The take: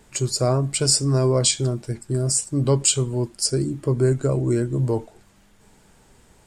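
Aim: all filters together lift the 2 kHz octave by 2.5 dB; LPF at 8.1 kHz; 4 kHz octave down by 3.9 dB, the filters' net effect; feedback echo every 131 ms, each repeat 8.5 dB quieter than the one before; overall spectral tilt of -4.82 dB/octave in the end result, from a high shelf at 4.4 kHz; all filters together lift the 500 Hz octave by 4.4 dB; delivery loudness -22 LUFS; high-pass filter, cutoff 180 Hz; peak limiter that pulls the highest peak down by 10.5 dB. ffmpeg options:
-af "highpass=180,lowpass=8100,equalizer=f=500:t=o:g=6,equalizer=f=2000:t=o:g=5,equalizer=f=4000:t=o:g=-3,highshelf=f=4400:g=-4.5,alimiter=limit=0.158:level=0:latency=1,aecho=1:1:131|262|393|524:0.376|0.143|0.0543|0.0206,volume=1.5"

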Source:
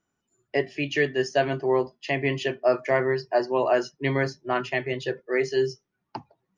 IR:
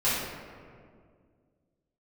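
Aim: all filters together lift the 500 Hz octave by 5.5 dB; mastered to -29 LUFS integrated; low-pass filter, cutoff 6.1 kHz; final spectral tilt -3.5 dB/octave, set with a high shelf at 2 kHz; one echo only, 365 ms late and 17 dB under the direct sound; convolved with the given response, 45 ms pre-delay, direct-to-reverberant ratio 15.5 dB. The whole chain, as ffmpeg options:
-filter_complex "[0:a]lowpass=6100,equalizer=f=500:t=o:g=7,highshelf=f=2000:g=7,aecho=1:1:365:0.141,asplit=2[s0][s1];[1:a]atrim=start_sample=2205,adelay=45[s2];[s1][s2]afir=irnorm=-1:irlink=0,volume=0.0376[s3];[s0][s3]amix=inputs=2:normalize=0,volume=0.376"

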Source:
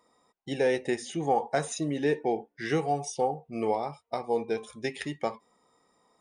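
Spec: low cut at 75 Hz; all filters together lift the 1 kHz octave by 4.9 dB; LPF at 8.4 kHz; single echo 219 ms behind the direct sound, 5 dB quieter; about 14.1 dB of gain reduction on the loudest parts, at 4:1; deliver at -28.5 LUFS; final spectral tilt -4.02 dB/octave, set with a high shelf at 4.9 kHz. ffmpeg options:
-af "highpass=75,lowpass=8400,equalizer=f=1000:t=o:g=7,highshelf=f=4900:g=6.5,acompressor=threshold=0.0178:ratio=4,aecho=1:1:219:0.562,volume=2.82"

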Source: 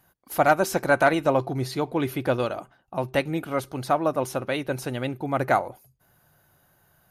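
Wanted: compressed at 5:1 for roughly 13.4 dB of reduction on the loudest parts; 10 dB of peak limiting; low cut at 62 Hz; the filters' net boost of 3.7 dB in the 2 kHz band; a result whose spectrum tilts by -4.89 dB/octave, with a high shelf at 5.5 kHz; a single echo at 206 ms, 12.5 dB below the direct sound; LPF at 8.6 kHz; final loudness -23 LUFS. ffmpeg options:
-af "highpass=62,lowpass=8600,equalizer=f=2000:t=o:g=5,highshelf=f=5500:g=4,acompressor=threshold=0.0398:ratio=5,alimiter=limit=0.0631:level=0:latency=1,aecho=1:1:206:0.237,volume=4.22"

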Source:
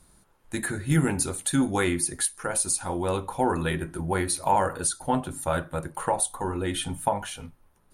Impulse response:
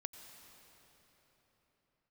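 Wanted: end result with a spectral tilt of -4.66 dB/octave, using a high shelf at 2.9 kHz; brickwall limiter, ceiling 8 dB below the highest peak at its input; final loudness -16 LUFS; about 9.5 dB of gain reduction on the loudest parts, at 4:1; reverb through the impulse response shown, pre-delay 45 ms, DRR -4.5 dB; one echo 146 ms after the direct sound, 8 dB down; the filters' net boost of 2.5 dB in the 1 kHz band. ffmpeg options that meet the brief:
-filter_complex "[0:a]equalizer=f=1000:t=o:g=4,highshelf=f=2900:g=-9,acompressor=threshold=0.0501:ratio=4,alimiter=limit=0.0841:level=0:latency=1,aecho=1:1:146:0.398,asplit=2[s0][s1];[1:a]atrim=start_sample=2205,adelay=45[s2];[s1][s2]afir=irnorm=-1:irlink=0,volume=2.37[s3];[s0][s3]amix=inputs=2:normalize=0,volume=3.55"

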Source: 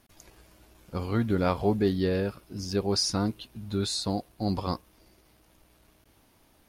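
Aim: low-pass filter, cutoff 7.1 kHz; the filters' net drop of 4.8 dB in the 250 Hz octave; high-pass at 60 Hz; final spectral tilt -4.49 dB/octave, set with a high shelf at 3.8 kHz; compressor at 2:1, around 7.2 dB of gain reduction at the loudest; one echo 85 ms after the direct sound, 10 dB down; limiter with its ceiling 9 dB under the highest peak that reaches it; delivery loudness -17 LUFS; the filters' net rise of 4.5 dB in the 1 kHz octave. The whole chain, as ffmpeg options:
-af "highpass=60,lowpass=7100,equalizer=f=250:t=o:g=-7,equalizer=f=1000:t=o:g=6,highshelf=f=3800:g=6,acompressor=threshold=0.0224:ratio=2,alimiter=level_in=1.33:limit=0.0631:level=0:latency=1,volume=0.75,aecho=1:1:85:0.316,volume=10"

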